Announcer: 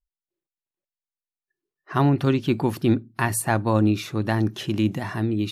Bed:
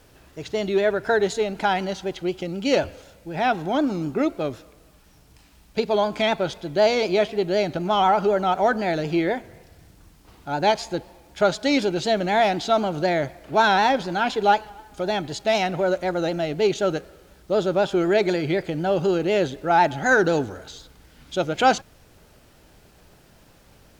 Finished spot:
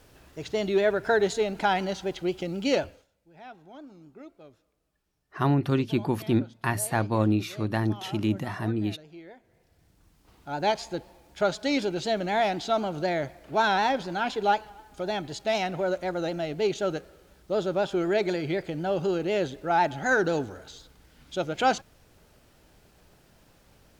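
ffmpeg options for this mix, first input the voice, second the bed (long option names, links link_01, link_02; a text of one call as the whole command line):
ffmpeg -i stem1.wav -i stem2.wav -filter_complex "[0:a]adelay=3450,volume=-4dB[link_01];[1:a]volume=16dB,afade=type=out:start_time=2.65:duration=0.42:silence=0.0841395,afade=type=in:start_time=9.39:duration=1.28:silence=0.11885[link_02];[link_01][link_02]amix=inputs=2:normalize=0" out.wav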